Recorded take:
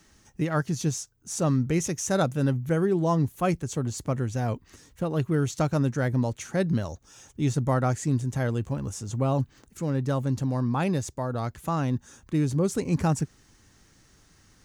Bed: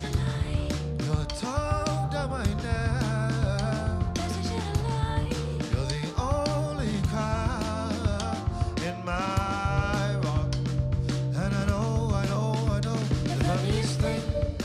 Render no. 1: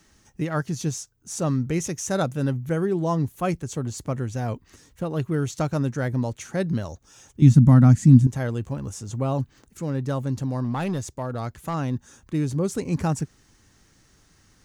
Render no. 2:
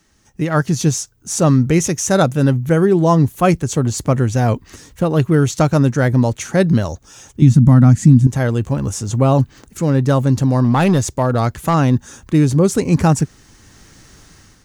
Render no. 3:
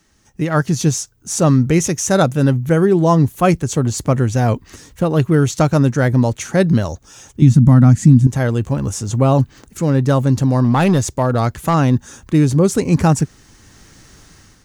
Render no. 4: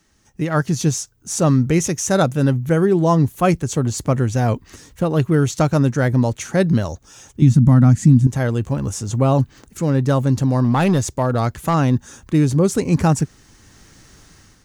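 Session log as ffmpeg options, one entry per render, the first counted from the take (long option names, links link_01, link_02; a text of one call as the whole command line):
ffmpeg -i in.wav -filter_complex "[0:a]asettb=1/sr,asplit=3[link_01][link_02][link_03];[link_01]atrim=end=7.424[link_04];[link_02]atrim=start=7.42:end=8.27,asetpts=PTS-STARTPTS,afade=type=in:duration=0.004:curve=qsin,afade=type=out:start_time=0.846:duration=0.004:curve=qsin,lowshelf=frequency=310:width_type=q:width=3:gain=10.5[link_05];[link_03]atrim=start=8.266[link_06];[link_04][link_05]acrossfade=duration=0.004:curve1=hsin:curve2=qsin[link_07];[link_07][link_06]acrossfade=duration=0.004:curve1=qsin:curve2=hsin,asettb=1/sr,asplit=3[link_08][link_09][link_10];[link_08]atrim=end=10.644[link_11];[link_09]atrim=start=10.64:end=11.74,asetpts=PTS-STARTPTS,afade=type=in:duration=0.004:curve=qsin,afade=type=out:start_time=1.096:duration=0.004:curve=qsin,volume=21dB,asoftclip=hard,volume=-21dB[link_12];[link_10]atrim=start=11.736[link_13];[link_11][link_12]acrossfade=duration=0.004:curve1=hsin:curve2=qsin[link_14];[link_14][link_13]acrossfade=duration=0.004:curve1=qsin:curve2=hsin" out.wav
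ffmpeg -i in.wav -af "alimiter=limit=-11dB:level=0:latency=1:release=167,dynaudnorm=framelen=170:gausssize=5:maxgain=14dB" out.wav
ffmpeg -i in.wav -af anull out.wav
ffmpeg -i in.wav -af "volume=-2.5dB" out.wav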